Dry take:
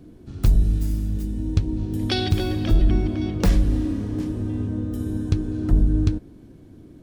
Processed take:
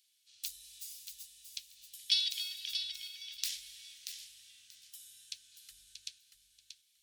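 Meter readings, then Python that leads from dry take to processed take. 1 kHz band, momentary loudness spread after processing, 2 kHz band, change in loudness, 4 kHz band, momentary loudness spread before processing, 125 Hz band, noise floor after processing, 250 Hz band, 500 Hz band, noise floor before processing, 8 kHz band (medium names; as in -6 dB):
under -40 dB, 24 LU, -12.0 dB, -14.5 dB, -0.5 dB, 7 LU, under -40 dB, -73 dBFS, under -40 dB, under -40 dB, -47 dBFS, no reading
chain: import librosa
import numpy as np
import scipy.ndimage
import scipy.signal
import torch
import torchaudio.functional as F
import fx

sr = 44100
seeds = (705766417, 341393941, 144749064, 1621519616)

y = fx.wow_flutter(x, sr, seeds[0], rate_hz=2.1, depth_cents=22.0)
y = scipy.signal.sosfilt(scipy.signal.cheby2(4, 60, 910.0, 'highpass', fs=sr, output='sos'), y)
y = fx.echo_feedback(y, sr, ms=633, feedback_pct=19, wet_db=-8)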